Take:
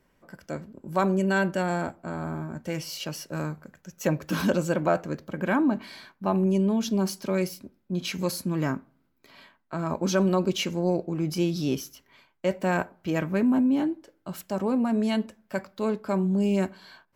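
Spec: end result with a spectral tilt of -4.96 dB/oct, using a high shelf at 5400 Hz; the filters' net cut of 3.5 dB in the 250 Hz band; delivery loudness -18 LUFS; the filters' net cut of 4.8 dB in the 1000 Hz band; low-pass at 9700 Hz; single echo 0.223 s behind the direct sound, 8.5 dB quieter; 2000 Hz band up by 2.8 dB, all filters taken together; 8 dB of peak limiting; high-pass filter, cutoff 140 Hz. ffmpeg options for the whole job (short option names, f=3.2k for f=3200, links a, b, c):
-af "highpass=140,lowpass=9.7k,equalizer=f=250:t=o:g=-3.5,equalizer=f=1k:t=o:g=-8.5,equalizer=f=2k:t=o:g=9,highshelf=f=5.4k:g=-8.5,alimiter=limit=-19dB:level=0:latency=1,aecho=1:1:223:0.376,volume=13dB"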